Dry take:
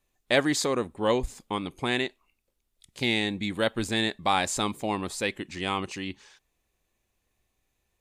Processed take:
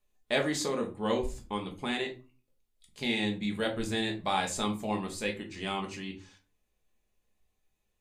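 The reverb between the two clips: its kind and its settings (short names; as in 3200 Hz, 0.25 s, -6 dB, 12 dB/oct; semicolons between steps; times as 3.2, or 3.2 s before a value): shoebox room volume 150 m³, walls furnished, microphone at 1.4 m; gain -7.5 dB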